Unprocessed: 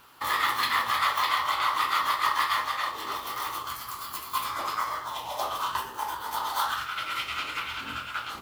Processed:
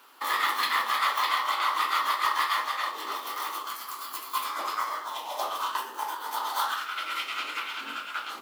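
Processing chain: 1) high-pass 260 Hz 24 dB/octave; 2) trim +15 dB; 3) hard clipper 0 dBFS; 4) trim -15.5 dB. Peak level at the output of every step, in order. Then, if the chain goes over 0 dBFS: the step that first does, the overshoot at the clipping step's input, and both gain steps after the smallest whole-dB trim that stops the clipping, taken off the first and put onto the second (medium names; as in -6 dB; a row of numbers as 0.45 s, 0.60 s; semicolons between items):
-11.0 dBFS, +4.0 dBFS, 0.0 dBFS, -15.5 dBFS; step 2, 4.0 dB; step 2 +11 dB, step 4 -11.5 dB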